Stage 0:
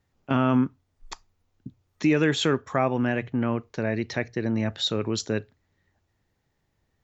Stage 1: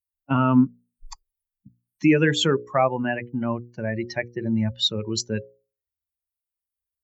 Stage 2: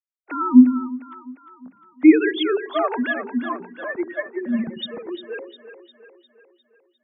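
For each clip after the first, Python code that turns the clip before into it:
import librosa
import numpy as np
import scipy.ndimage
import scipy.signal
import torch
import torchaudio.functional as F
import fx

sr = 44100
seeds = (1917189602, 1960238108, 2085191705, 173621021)

y1 = fx.bin_expand(x, sr, power=2.0)
y1 = fx.hum_notches(y1, sr, base_hz=60, count=9)
y1 = y1 * 10.0 ** (6.5 / 20.0)
y2 = fx.sine_speech(y1, sr)
y2 = fx.echo_split(y2, sr, split_hz=340.0, low_ms=86, high_ms=353, feedback_pct=52, wet_db=-11.0)
y2 = y2 * 10.0 ** (3.0 / 20.0)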